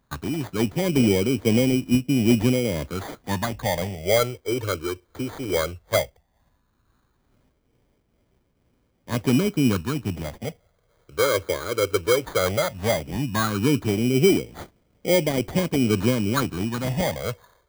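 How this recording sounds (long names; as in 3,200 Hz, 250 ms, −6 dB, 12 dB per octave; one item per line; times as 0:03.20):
phaser sweep stages 6, 0.15 Hz, lowest notch 200–1,300 Hz
tremolo triangle 2.2 Hz, depth 40%
aliases and images of a low sample rate 2,700 Hz, jitter 0%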